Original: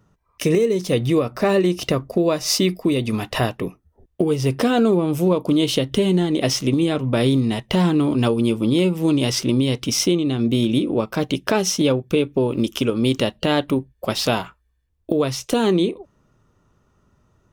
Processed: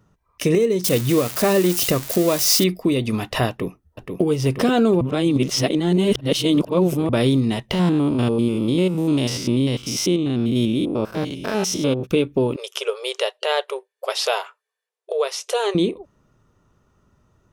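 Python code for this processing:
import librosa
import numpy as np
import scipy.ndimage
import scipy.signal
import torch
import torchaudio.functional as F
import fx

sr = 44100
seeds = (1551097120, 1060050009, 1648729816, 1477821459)

y = fx.crossing_spikes(x, sr, level_db=-14.5, at=(0.84, 2.64))
y = fx.echo_throw(y, sr, start_s=3.49, length_s=0.72, ms=480, feedback_pct=75, wet_db=-5.0)
y = fx.spec_steps(y, sr, hold_ms=100, at=(7.72, 12.05), fade=0.02)
y = fx.brickwall_bandpass(y, sr, low_hz=390.0, high_hz=12000.0, at=(12.56, 15.75))
y = fx.edit(y, sr, fx.reverse_span(start_s=5.01, length_s=2.08), tone=tone)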